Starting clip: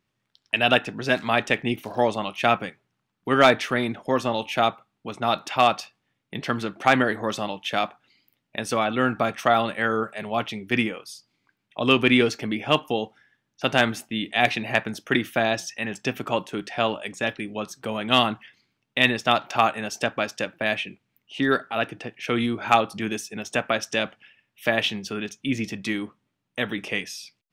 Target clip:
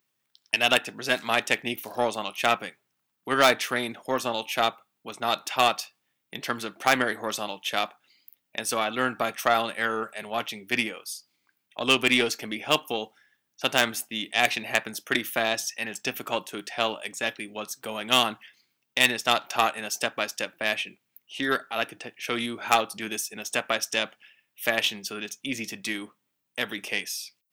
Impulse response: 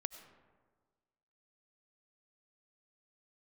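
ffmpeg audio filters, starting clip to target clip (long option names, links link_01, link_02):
-af "aeval=exprs='0.668*(cos(1*acos(clip(val(0)/0.668,-1,1)))-cos(1*PI/2))+0.0668*(cos(4*acos(clip(val(0)/0.668,-1,1)))-cos(4*PI/2))':channel_layout=same,aemphasis=mode=production:type=bsi,volume=-3.5dB"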